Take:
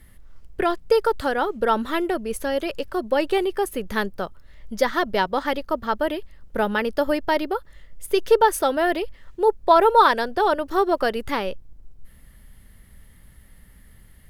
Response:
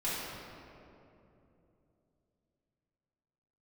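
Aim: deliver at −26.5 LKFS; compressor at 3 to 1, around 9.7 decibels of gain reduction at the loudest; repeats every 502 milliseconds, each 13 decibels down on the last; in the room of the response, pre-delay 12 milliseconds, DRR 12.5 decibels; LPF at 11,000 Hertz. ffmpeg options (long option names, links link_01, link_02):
-filter_complex "[0:a]lowpass=11000,acompressor=threshold=-24dB:ratio=3,aecho=1:1:502|1004|1506:0.224|0.0493|0.0108,asplit=2[link_01][link_02];[1:a]atrim=start_sample=2205,adelay=12[link_03];[link_02][link_03]afir=irnorm=-1:irlink=0,volume=-19.5dB[link_04];[link_01][link_04]amix=inputs=2:normalize=0,volume=1.5dB"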